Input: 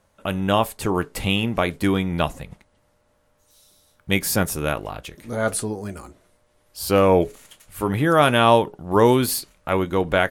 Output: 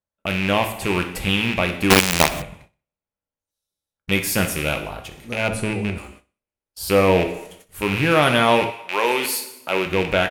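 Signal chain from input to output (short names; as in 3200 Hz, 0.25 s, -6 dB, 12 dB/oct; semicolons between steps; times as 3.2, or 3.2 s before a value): rattling part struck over -27 dBFS, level -12 dBFS; bell 1200 Hz -2.5 dB 0.23 oct; two-slope reverb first 0.75 s, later 2 s, from -25 dB, DRR 5.5 dB; gate -45 dBFS, range -29 dB; 5.48–5.98 tilt -2.5 dB/oct; 8.7–9.85 HPF 910 Hz -> 250 Hz 12 dB/oct; on a send: feedback echo 62 ms, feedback 34%, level -18.5 dB; 1.9–2.42 on the sum: companded quantiser 2-bit; gain -1 dB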